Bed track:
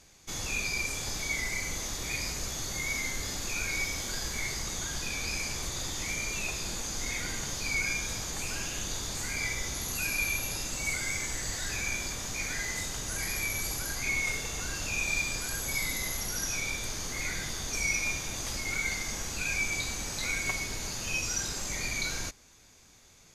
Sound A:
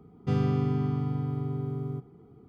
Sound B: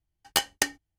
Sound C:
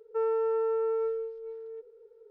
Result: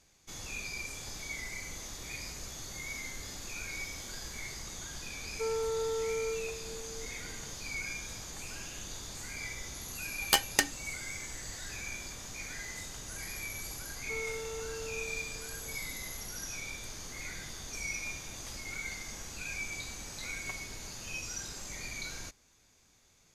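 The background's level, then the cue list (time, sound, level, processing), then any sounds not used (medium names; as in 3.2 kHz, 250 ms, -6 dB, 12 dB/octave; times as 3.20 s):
bed track -8 dB
5.25 s: add C -5.5 dB
9.97 s: add B -1 dB
13.95 s: add C -13.5 dB
not used: A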